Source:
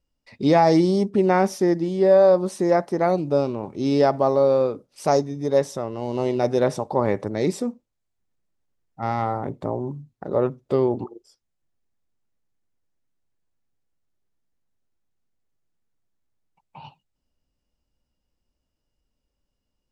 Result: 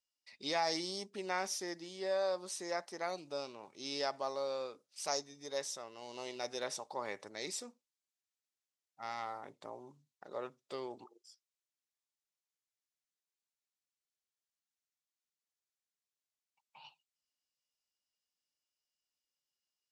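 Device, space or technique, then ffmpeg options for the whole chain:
piezo pickup straight into a mixer: -af "lowpass=6.5k,aderivative,volume=2dB"

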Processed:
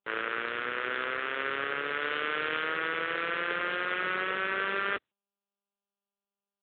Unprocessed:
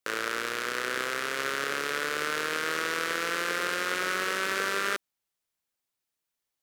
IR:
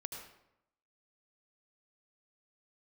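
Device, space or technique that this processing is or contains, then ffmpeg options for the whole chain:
mobile call with aggressive noise cancelling: -filter_complex "[0:a]asettb=1/sr,asplit=3[a][b][c];[a]atrim=end=2.014[d];[b]atrim=start=2.01:end=2.64,asetpts=PTS-STARTPTS,afade=t=in:d=0.004:c=qsin,afade=t=out:st=0.626:d=0.004:c=qsin,equalizer=f=3k:w=1.9:g=3[e];[c]atrim=start=2.636[f];[d][e]acrossfade=d=0.004:c1=hsin:c2=qsin[g];[g][f]acrossfade=d=0.004:c1=qsin:c2=hsin,highpass=f=150:p=1,afftdn=nr=21:nf=-47" -ar 8000 -c:a libopencore_amrnb -b:a 10200

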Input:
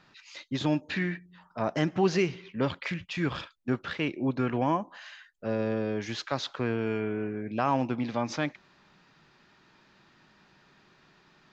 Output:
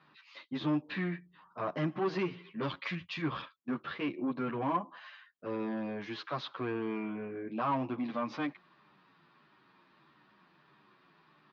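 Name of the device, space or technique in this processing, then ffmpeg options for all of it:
barber-pole flanger into a guitar amplifier: -filter_complex "[0:a]asplit=2[a][b];[b]adelay=9.6,afreqshift=-1.6[c];[a][c]amix=inputs=2:normalize=1,asoftclip=type=tanh:threshold=-25dB,highpass=99,equalizer=f=100:t=q:w=4:g=-9,equalizer=f=150:t=q:w=4:g=3,equalizer=f=310:t=q:w=4:g=4,equalizer=f=1.1k:t=q:w=4:g=9,lowpass=f=4.2k:w=0.5412,lowpass=f=4.2k:w=1.3066,asettb=1/sr,asplit=3[d][e][f];[d]atrim=end=2.614[g];[e]atrim=start=2.61:end=3.22,asetpts=PTS-STARTPTS,afade=t=in:d=0.004:c=qsin,afade=t=out:st=0.606:d=0.004:c=qsin,aemphasis=mode=production:type=75fm[h];[f]atrim=start=3.216[i];[g][h]acrossfade=d=0.004:c1=hsin:c2=qsin[j];[j][i]acrossfade=d=0.004:c1=qsin:c2=hsin,volume=-2.5dB"

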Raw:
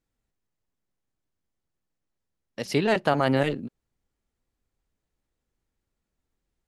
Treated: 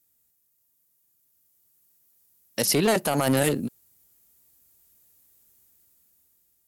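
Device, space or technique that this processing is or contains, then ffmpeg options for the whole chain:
FM broadcast chain: -filter_complex "[0:a]highpass=68,dynaudnorm=f=620:g=5:m=10.5dB,acrossover=split=1700|5600[a][b][c];[a]acompressor=threshold=-15dB:ratio=4[d];[b]acompressor=threshold=-37dB:ratio=4[e];[c]acompressor=threshold=-46dB:ratio=4[f];[d][e][f]amix=inputs=3:normalize=0,aemphasis=mode=production:type=50fm,alimiter=limit=-11.5dB:level=0:latency=1:release=12,asoftclip=type=hard:threshold=-15.5dB,lowpass=f=15k:w=0.5412,lowpass=f=15k:w=1.3066,aemphasis=mode=production:type=50fm"

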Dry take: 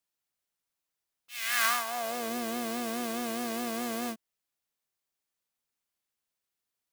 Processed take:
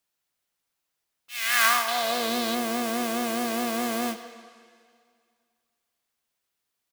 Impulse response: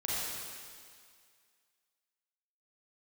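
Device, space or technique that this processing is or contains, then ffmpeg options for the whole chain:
filtered reverb send: -filter_complex "[0:a]asplit=2[a][b];[b]highpass=f=420:p=1,lowpass=5.6k[c];[1:a]atrim=start_sample=2205[d];[c][d]afir=irnorm=-1:irlink=0,volume=-13.5dB[e];[a][e]amix=inputs=2:normalize=0,asettb=1/sr,asplit=3[f][g][h];[f]atrim=end=1.884[i];[g]atrim=start=1.88:end=2.55,asetpts=PTS-STARTPTS,afade=t=in:d=0.004:c=qsin,afade=t=out:st=0.666:d=0.004:c=qsin,equalizer=f=3.9k:t=o:w=0.58:g=10[j];[h]atrim=start=2.546[k];[i][j]acrossfade=d=0.004:c1=hsin:c2=qsin[l];[l][k]acrossfade=d=0.004:c1=qsin:c2=hsin,aecho=1:1:97|194|291:0.133|0.0493|0.0183,volume=5dB"

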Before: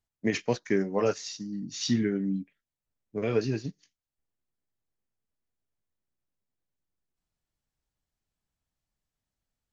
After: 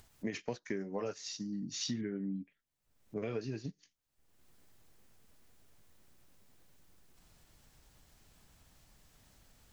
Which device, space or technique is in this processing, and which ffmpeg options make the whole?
upward and downward compression: -filter_complex "[0:a]acompressor=mode=upward:threshold=-40dB:ratio=2.5,acompressor=threshold=-33dB:ratio=5,asettb=1/sr,asplit=3[a][b][c];[a]atrim=end=2.014[d];[b]atrim=start=2.01:end=2.41,asetpts=PTS-STARTPTS,afade=t=in:d=0.004:c=qsin,afade=t=out:st=0.396:d=0.004:c=qsin,lowpass=2.6k[e];[c]atrim=start=2.406[f];[d][e]acrossfade=d=0.004:c1=hsin:c2=qsin[g];[g][f]acrossfade=d=0.004:c1=qsin:c2=hsin,volume=-2dB"

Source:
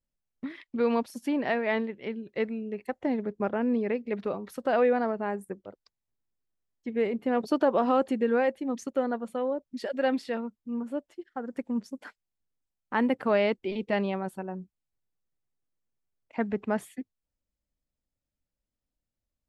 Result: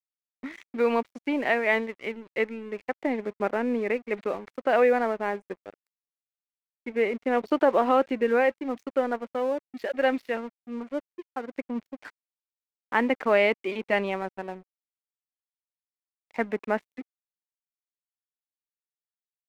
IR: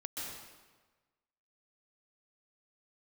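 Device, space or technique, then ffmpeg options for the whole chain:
pocket radio on a weak battery: -af "highpass=280,lowpass=3.7k,aeval=exprs='sgn(val(0))*max(abs(val(0))-0.00316,0)':c=same,equalizer=f=2.2k:t=o:w=0.52:g=6.5,volume=3.5dB"

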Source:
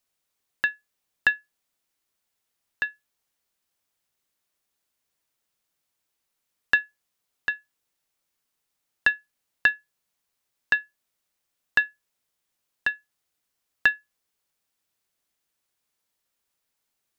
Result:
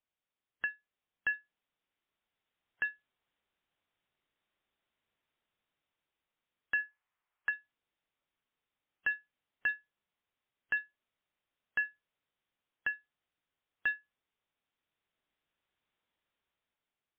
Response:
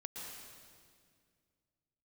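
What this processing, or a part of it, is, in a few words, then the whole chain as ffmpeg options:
low-bitrate web radio: -filter_complex "[0:a]asplit=3[a][b][c];[a]afade=t=out:st=6.78:d=0.02[d];[b]equalizer=f=125:t=o:w=1:g=-7,equalizer=f=250:t=o:w=1:g=-7,equalizer=f=500:t=o:w=1:g=-5,equalizer=f=1k:t=o:w=1:g=6,equalizer=f=2k:t=o:w=1:g=4,equalizer=f=4k:t=o:w=1:g=-8,afade=t=in:st=6.78:d=0.02,afade=t=out:st=7.49:d=0.02[e];[c]afade=t=in:st=7.49:d=0.02[f];[d][e][f]amix=inputs=3:normalize=0,dynaudnorm=f=330:g=7:m=8dB,alimiter=limit=-13.5dB:level=0:latency=1:release=48,volume=-8dB" -ar 8000 -c:a libmp3lame -b:a 24k

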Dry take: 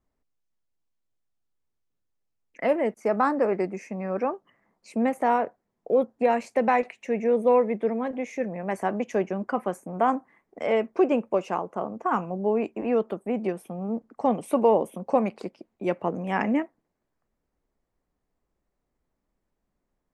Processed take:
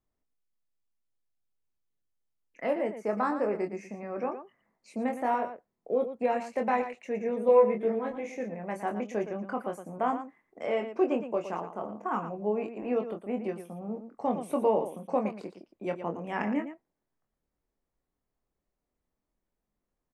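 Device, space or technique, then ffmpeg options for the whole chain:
slapback doubling: -filter_complex "[0:a]asettb=1/sr,asplit=3[a][b][c];[a]atrim=end=7.474[d];[b]atrim=start=7.47:end=8.32,asetpts=PTS-STARTPTS,afade=t=in:d=0.004:c=qsin,afade=t=out:st=0.846:d=0.004:c=qsin,asplit=2[e][f];[f]adelay=18,volume=-2dB[g];[e][g]amix=inputs=2:normalize=0,atrim=end_sample=37485[h];[c]atrim=start=8.316[i];[d][h]acrossfade=d=0.004:c1=hsin:c2=qsin[j];[j][i]acrossfade=d=0.004:c1=qsin:c2=hsin,asplit=3[k][l][m];[l]adelay=24,volume=-5.5dB[n];[m]adelay=115,volume=-10dB[o];[k][n][o]amix=inputs=3:normalize=0,volume=-7dB"

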